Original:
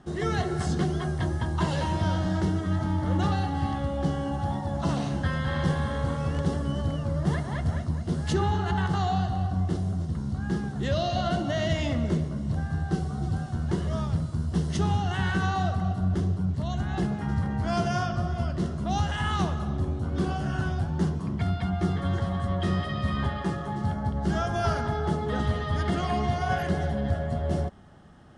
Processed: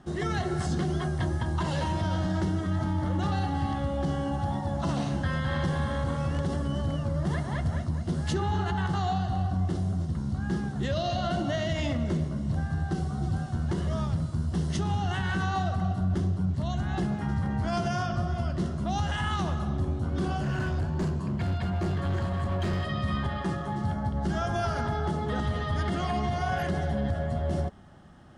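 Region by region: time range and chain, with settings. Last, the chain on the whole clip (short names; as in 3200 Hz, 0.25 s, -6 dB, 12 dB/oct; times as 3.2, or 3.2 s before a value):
20.41–22.88 ripple EQ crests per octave 1.4, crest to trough 6 dB + hard clip -24.5 dBFS
whole clip: notch 440 Hz, Q 12; limiter -19.5 dBFS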